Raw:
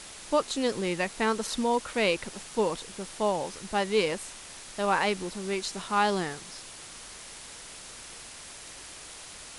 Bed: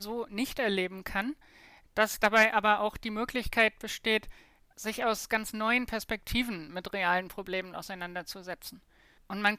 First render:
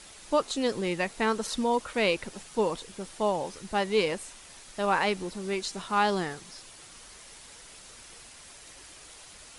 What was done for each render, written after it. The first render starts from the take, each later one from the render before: denoiser 6 dB, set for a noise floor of -45 dBFS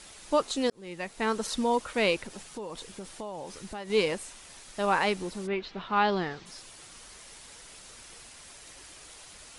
0.7–1.41 fade in linear; 2.17–3.9 compressor, threshold -35 dBFS; 5.46–6.45 LPF 3000 Hz -> 5300 Hz 24 dB/oct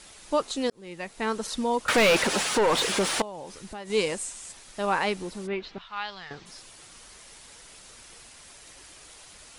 1.88–3.22 overdrive pedal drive 34 dB, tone 3500 Hz, clips at -12.5 dBFS; 3.85–4.51 bell 7800 Hz +7 dB -> +14.5 dB; 5.78–6.31 passive tone stack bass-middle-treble 10-0-10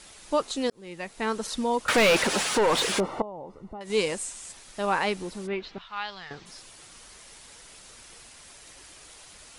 3–3.81 polynomial smoothing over 65 samples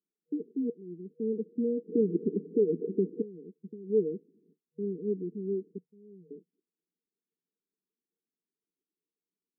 gate -42 dBFS, range -35 dB; FFT band-pass 160–480 Hz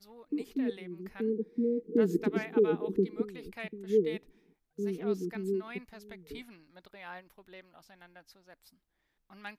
add bed -17.5 dB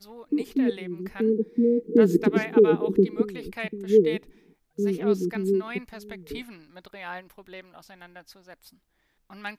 gain +8.5 dB

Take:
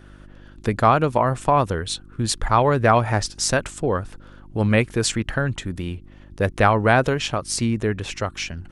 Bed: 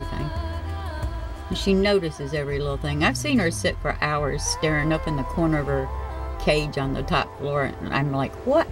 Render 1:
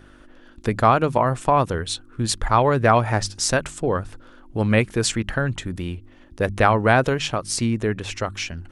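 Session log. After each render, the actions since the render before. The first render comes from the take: de-hum 50 Hz, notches 4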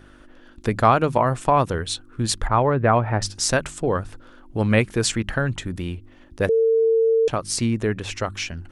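2.47–3.22 air absorption 450 m; 6.49–7.28 bleep 451 Hz -14.5 dBFS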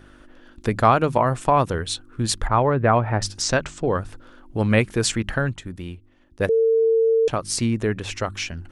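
3.42–3.93 LPF 7000 Hz 24 dB/oct; 5.49–7.22 upward expander, over -36 dBFS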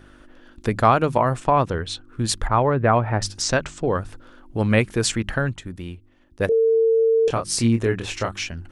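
1.4–2.08 air absorption 72 m; 6.49–8.39 doubler 26 ms -5 dB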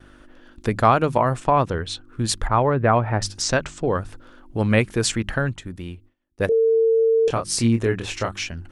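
gate with hold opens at -39 dBFS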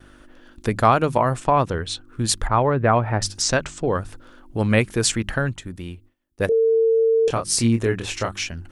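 high shelf 6700 Hz +6 dB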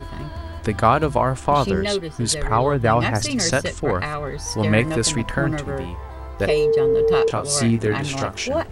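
add bed -3.5 dB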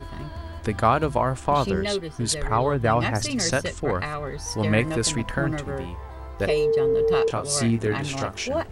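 gain -3.5 dB

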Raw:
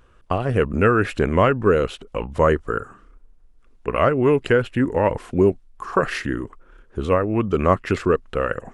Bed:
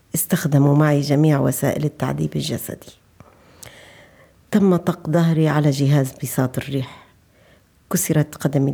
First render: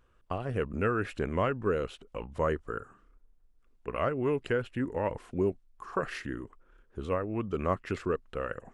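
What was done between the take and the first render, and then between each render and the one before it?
gain -12 dB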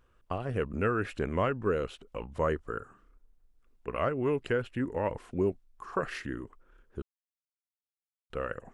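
7.02–8.3 mute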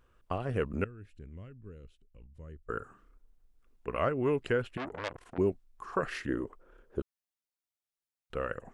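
0.84–2.69 passive tone stack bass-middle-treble 10-0-1; 4.77–5.38 core saturation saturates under 2600 Hz; 6.28–7 bell 520 Hz +10 dB 1.6 oct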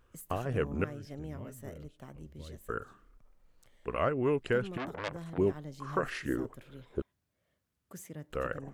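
add bed -27.5 dB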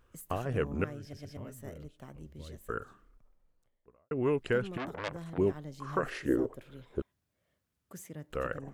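1.01 stutter in place 0.12 s, 3 plays; 2.78–4.11 studio fade out; 6.06–6.6 EQ curve 200 Hz 0 dB, 480 Hz +9 dB, 1300 Hz -2 dB

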